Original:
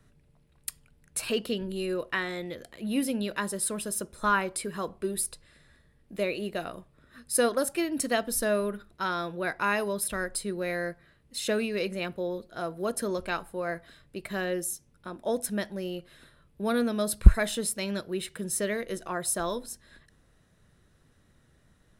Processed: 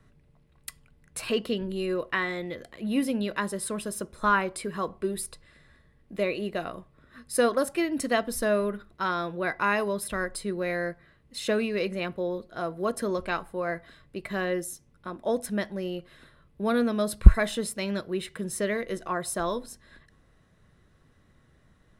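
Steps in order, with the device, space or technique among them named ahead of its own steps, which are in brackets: inside a helmet (treble shelf 5.5 kHz -9 dB; small resonant body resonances 1.1/2 kHz, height 9 dB, ringing for 90 ms); trim +2 dB

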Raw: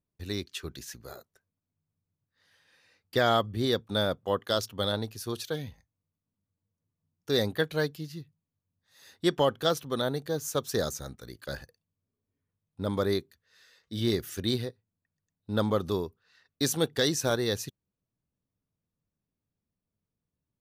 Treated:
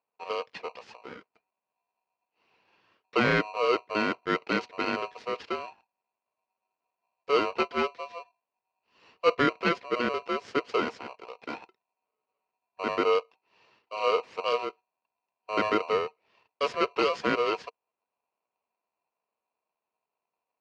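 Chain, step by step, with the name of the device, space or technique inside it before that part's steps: ring modulator pedal into a guitar cabinet (polarity switched at an audio rate 850 Hz; cabinet simulation 99–3900 Hz, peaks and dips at 220 Hz +4 dB, 460 Hz +9 dB, 730 Hz -4 dB, 3.6 kHz -8 dB)

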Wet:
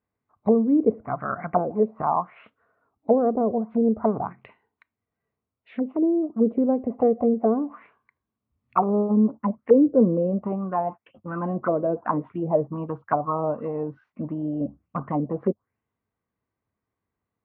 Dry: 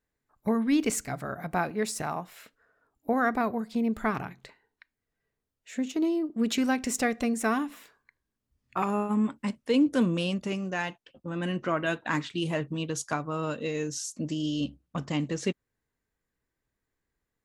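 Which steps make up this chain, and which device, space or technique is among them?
envelope filter bass rig (touch-sensitive low-pass 490–4400 Hz down, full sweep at -24.5 dBFS; cabinet simulation 73–2200 Hz, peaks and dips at 97 Hz +8 dB, 210 Hz +5 dB, 700 Hz +4 dB, 1.1 kHz +6 dB, 1.7 kHz -9 dB)

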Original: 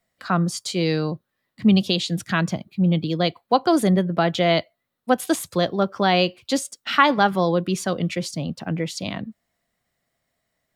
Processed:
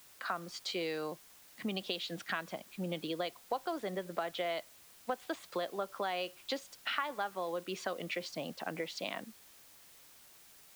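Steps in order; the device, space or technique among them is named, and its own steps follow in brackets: baby monitor (band-pass 470–3400 Hz; compression, threshold -32 dBFS, peak gain reduction 20 dB; white noise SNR 19 dB); trim -2 dB

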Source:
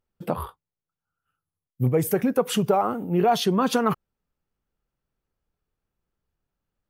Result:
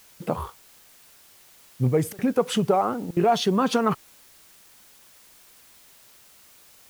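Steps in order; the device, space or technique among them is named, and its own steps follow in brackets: worn cassette (low-pass 9 kHz; wow and flutter; level dips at 2.13/3.11 s, 55 ms -25 dB; white noise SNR 26 dB)

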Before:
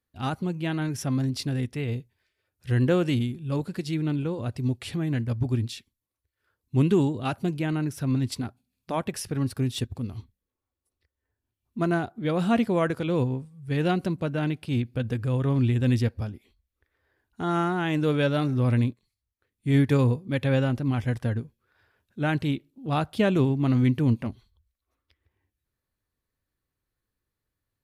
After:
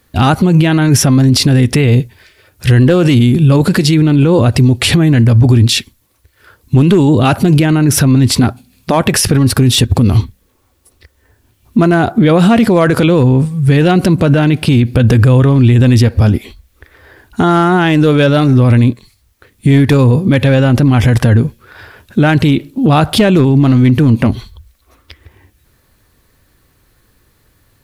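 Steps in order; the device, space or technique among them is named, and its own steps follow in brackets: loud club master (compression 2.5:1, threshold -25 dBFS, peak gain reduction 6.5 dB; hard clipper -20 dBFS, distortion -27 dB; loudness maximiser +31.5 dB); trim -1 dB

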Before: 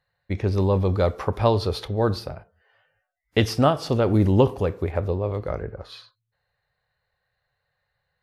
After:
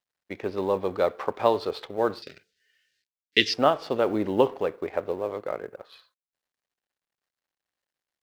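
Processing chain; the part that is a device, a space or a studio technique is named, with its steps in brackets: phone line with mismatched companding (band-pass 340–3600 Hz; companding laws mixed up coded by A); 2.22–3.54 s: FFT filter 410 Hz 0 dB, 660 Hz -23 dB, 1 kHz -26 dB, 1.8 kHz +5 dB, 4.7 kHz +14 dB, 11 kHz 0 dB

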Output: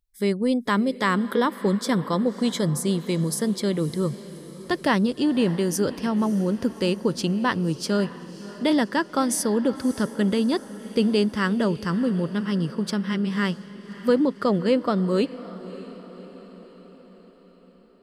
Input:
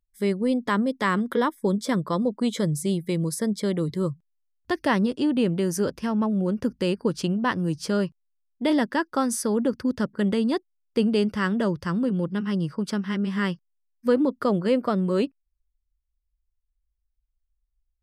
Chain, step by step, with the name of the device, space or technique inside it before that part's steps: 14.17–15.06 s: low-pass 9.7 kHz 12 dB/octave; presence and air boost (peaking EQ 4.2 kHz +3.5 dB 0.77 oct; treble shelf 9 kHz +4 dB); echo that smears into a reverb 592 ms, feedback 56%, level -16 dB; trim +1 dB

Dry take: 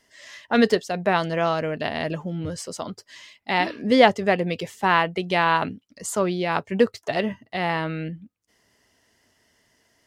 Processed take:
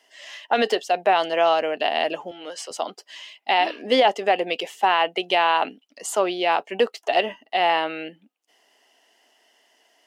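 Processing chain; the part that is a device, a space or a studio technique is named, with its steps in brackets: laptop speaker (high-pass 300 Hz 24 dB/octave; peaking EQ 760 Hz +10 dB 0.49 oct; peaking EQ 2.9 kHz +10 dB 0.43 oct; peak limiter -8.5 dBFS, peak gain reduction 13 dB); 2.31–2.71 s: frequency weighting A

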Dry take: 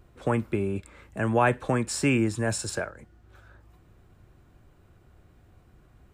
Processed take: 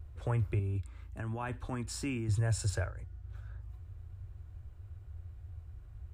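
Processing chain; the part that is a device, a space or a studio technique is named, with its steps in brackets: car stereo with a boomy subwoofer (resonant low shelf 130 Hz +13 dB, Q 3; peak limiter -16.5 dBFS, peak gain reduction 8 dB); 0.59–2.29 s: graphic EQ 125/250/500/2000/8000 Hz -11/+8/-10/-5/-4 dB; trim -6.5 dB

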